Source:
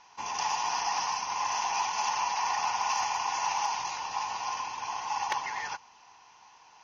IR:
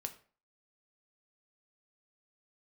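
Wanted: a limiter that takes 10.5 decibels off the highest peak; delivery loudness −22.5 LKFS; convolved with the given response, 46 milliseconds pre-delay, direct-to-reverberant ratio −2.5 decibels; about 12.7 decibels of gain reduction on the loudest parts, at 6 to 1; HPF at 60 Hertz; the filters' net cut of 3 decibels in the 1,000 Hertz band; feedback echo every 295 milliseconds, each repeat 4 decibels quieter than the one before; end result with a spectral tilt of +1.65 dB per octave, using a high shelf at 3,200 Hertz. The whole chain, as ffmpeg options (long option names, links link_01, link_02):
-filter_complex "[0:a]highpass=60,equalizer=frequency=1000:width_type=o:gain=-4,highshelf=frequency=3200:gain=7.5,acompressor=threshold=-40dB:ratio=6,alimiter=level_in=14dB:limit=-24dB:level=0:latency=1,volume=-14dB,aecho=1:1:295|590|885|1180|1475|1770|2065|2360|2655:0.631|0.398|0.25|0.158|0.0994|0.0626|0.0394|0.0249|0.0157,asplit=2[link_01][link_02];[1:a]atrim=start_sample=2205,adelay=46[link_03];[link_02][link_03]afir=irnorm=-1:irlink=0,volume=4.5dB[link_04];[link_01][link_04]amix=inputs=2:normalize=0,volume=17dB"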